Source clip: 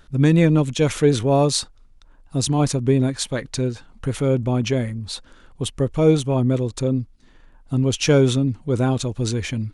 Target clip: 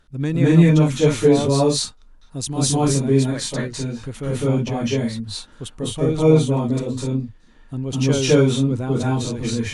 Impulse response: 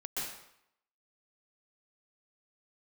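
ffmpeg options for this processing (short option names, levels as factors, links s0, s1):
-filter_complex "[0:a]asettb=1/sr,asplit=3[s0][s1][s2];[s0]atrim=end=2.364[s3];[s1]atrim=start=2.36:end=2.9,asetpts=PTS-STARTPTS,afade=t=in:d=0.004:c=qsin,afade=t=out:st=0.536:d=0.004:c=qsin,highshelf=f=6600:g=8[s4];[s2]atrim=start=2.896[s5];[s3][s4]acrossfade=d=0.004:c1=hsin:c2=qsin[s6];[s6][s5]acrossfade=d=0.004:c1=qsin:c2=hsin[s7];[1:a]atrim=start_sample=2205,afade=t=out:st=0.21:d=0.01,atrim=end_sample=9702,asetrate=26019,aresample=44100[s8];[s7][s8]afir=irnorm=-1:irlink=0,volume=0.596"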